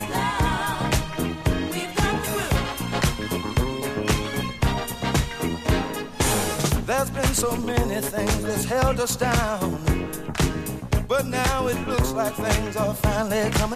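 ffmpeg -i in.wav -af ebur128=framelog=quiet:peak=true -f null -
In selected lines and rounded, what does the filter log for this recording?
Integrated loudness:
  I:         -24.1 LUFS
  Threshold: -34.1 LUFS
Loudness range:
  LRA:         1.8 LU
  Threshold: -44.1 LUFS
  LRA low:   -25.0 LUFS
  LRA high:  -23.1 LUFS
True peak:
  Peak:       -8.1 dBFS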